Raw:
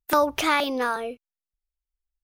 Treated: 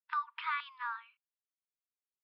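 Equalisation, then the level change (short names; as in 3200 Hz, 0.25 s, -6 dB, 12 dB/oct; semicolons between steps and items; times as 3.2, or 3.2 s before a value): brick-wall FIR band-pass 920–5500 Hz; air absorption 490 m; -7.5 dB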